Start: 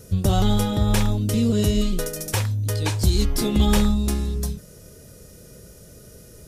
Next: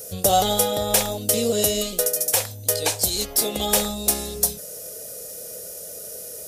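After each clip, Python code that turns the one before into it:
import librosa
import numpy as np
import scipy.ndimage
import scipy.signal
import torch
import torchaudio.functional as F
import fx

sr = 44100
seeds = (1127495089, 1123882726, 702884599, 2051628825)

y = fx.riaa(x, sr, side='recording')
y = fx.rider(y, sr, range_db=10, speed_s=0.5)
y = fx.band_shelf(y, sr, hz=590.0, db=11.0, octaves=1.0)
y = y * 10.0 ** (-1.5 / 20.0)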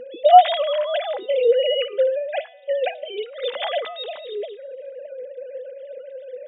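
y = fx.sine_speech(x, sr)
y = fx.comb_fb(y, sr, f0_hz=250.0, decay_s=1.3, harmonics='all', damping=0.0, mix_pct=50)
y = fx.small_body(y, sr, hz=(240.0, 2000.0), ring_ms=100, db=10)
y = y * 10.0 ** (8.0 / 20.0)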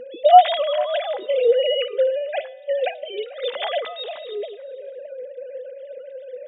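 y = x + 10.0 ** (-20.5 / 20.0) * np.pad(x, (int(443 * sr / 1000.0), 0))[:len(x)]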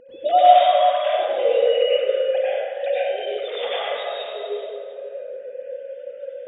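y = fx.volume_shaper(x, sr, bpm=112, per_beat=1, depth_db=-11, release_ms=101.0, shape='fast start')
y = fx.rev_plate(y, sr, seeds[0], rt60_s=2.1, hf_ratio=0.6, predelay_ms=80, drr_db=-9.5)
y = y * 10.0 ** (-8.0 / 20.0)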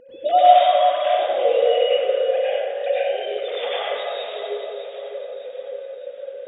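y = fx.echo_feedback(x, sr, ms=609, feedback_pct=49, wet_db=-12.0)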